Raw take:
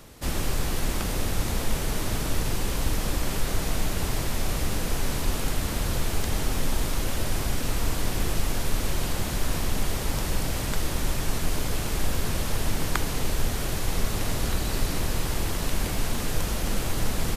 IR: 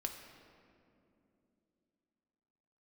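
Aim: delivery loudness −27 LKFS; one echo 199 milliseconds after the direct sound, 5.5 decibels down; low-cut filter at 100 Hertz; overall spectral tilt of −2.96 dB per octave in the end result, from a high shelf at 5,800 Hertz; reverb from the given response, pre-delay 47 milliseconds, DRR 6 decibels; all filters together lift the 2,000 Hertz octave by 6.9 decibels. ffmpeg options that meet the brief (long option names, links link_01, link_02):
-filter_complex "[0:a]highpass=100,equalizer=frequency=2000:width_type=o:gain=8,highshelf=frequency=5800:gain=4.5,aecho=1:1:199:0.531,asplit=2[link_01][link_02];[1:a]atrim=start_sample=2205,adelay=47[link_03];[link_02][link_03]afir=irnorm=-1:irlink=0,volume=-5.5dB[link_04];[link_01][link_04]amix=inputs=2:normalize=0,volume=-1.5dB"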